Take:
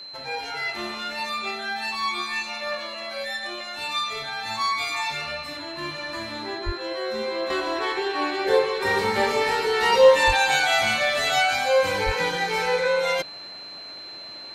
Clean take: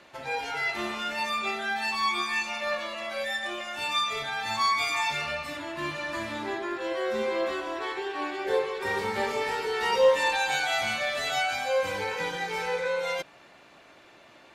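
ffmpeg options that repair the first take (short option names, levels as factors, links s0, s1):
-filter_complex "[0:a]bandreject=f=4100:w=30,asplit=3[s0][s1][s2];[s0]afade=t=out:st=6.65:d=0.02[s3];[s1]highpass=f=140:w=0.5412,highpass=f=140:w=1.3066,afade=t=in:st=6.65:d=0.02,afade=t=out:st=6.77:d=0.02[s4];[s2]afade=t=in:st=6.77:d=0.02[s5];[s3][s4][s5]amix=inputs=3:normalize=0,asplit=3[s6][s7][s8];[s6]afade=t=out:st=10.26:d=0.02[s9];[s7]highpass=f=140:w=0.5412,highpass=f=140:w=1.3066,afade=t=in:st=10.26:d=0.02,afade=t=out:st=10.38:d=0.02[s10];[s8]afade=t=in:st=10.38:d=0.02[s11];[s9][s10][s11]amix=inputs=3:normalize=0,asplit=3[s12][s13][s14];[s12]afade=t=out:st=12.05:d=0.02[s15];[s13]highpass=f=140:w=0.5412,highpass=f=140:w=1.3066,afade=t=in:st=12.05:d=0.02,afade=t=out:st=12.17:d=0.02[s16];[s14]afade=t=in:st=12.17:d=0.02[s17];[s15][s16][s17]amix=inputs=3:normalize=0,asetnsamples=n=441:p=0,asendcmd='7.5 volume volume -6.5dB',volume=1"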